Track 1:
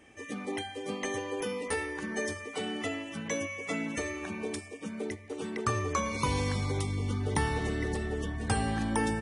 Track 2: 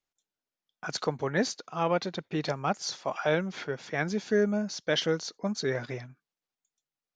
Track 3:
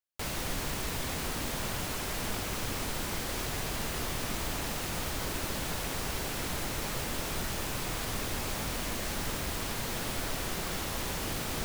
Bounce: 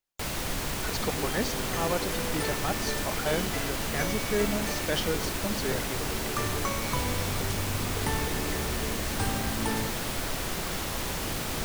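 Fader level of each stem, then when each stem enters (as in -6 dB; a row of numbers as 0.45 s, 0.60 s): -2.5 dB, -3.0 dB, +2.5 dB; 0.70 s, 0.00 s, 0.00 s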